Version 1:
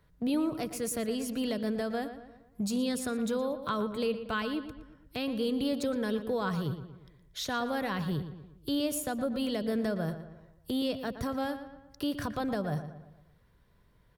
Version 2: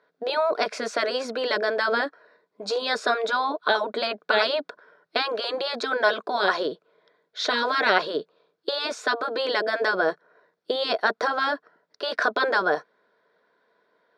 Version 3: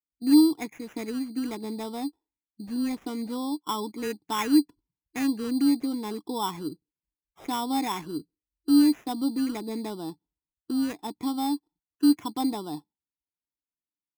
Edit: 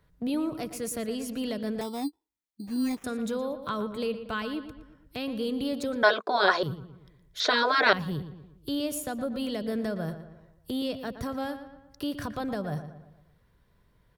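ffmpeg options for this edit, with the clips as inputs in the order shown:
-filter_complex "[1:a]asplit=2[s0][s1];[0:a]asplit=4[s2][s3][s4][s5];[s2]atrim=end=1.812[s6];[2:a]atrim=start=1.808:end=3.042[s7];[s3]atrim=start=3.038:end=6.032[s8];[s0]atrim=start=6.028:end=6.632[s9];[s4]atrim=start=6.628:end=7.402[s10];[s1]atrim=start=7.398:end=7.932[s11];[s5]atrim=start=7.928[s12];[s6][s7]acrossfade=d=0.004:c1=hsin:c2=hsin[s13];[s13][s8]acrossfade=d=0.004:c1=hsin:c2=hsin[s14];[s14][s9]acrossfade=d=0.004:c1=hsin:c2=hsin[s15];[s15][s10]acrossfade=d=0.004:c1=hsin:c2=hsin[s16];[s16][s11]acrossfade=d=0.004:c1=hsin:c2=hsin[s17];[s17][s12]acrossfade=d=0.004:c1=hsin:c2=hsin"

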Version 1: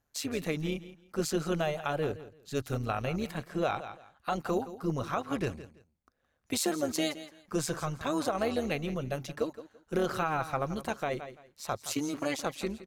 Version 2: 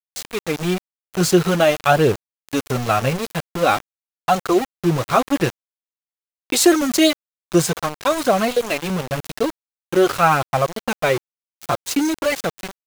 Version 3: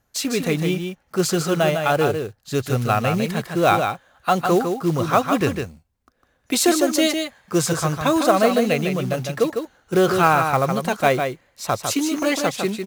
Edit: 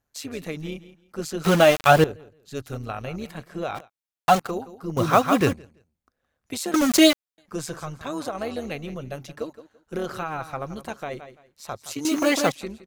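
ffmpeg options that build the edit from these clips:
-filter_complex "[1:a]asplit=3[s0][s1][s2];[2:a]asplit=2[s3][s4];[0:a]asplit=6[s5][s6][s7][s8][s9][s10];[s5]atrim=end=1.442[s11];[s0]atrim=start=1.438:end=2.042[s12];[s6]atrim=start=2.038:end=3.9[s13];[s1]atrim=start=3.74:end=4.52[s14];[s7]atrim=start=4.36:end=4.972[s15];[s3]atrim=start=4.968:end=5.532[s16];[s8]atrim=start=5.528:end=6.742[s17];[s2]atrim=start=6.738:end=7.382[s18];[s9]atrim=start=7.378:end=12.052[s19];[s4]atrim=start=12.048:end=12.522[s20];[s10]atrim=start=12.518[s21];[s11][s12]acrossfade=d=0.004:c1=hsin:c2=hsin[s22];[s22][s13]acrossfade=d=0.004:c1=hsin:c2=hsin[s23];[s23][s14]acrossfade=d=0.16:c1=tri:c2=tri[s24];[s24][s15]acrossfade=d=0.16:c1=tri:c2=tri[s25];[s25][s16]acrossfade=d=0.004:c1=hsin:c2=hsin[s26];[s26][s17]acrossfade=d=0.004:c1=hsin:c2=hsin[s27];[s27][s18]acrossfade=d=0.004:c1=hsin:c2=hsin[s28];[s28][s19]acrossfade=d=0.004:c1=hsin:c2=hsin[s29];[s29][s20]acrossfade=d=0.004:c1=hsin:c2=hsin[s30];[s30][s21]acrossfade=d=0.004:c1=hsin:c2=hsin"

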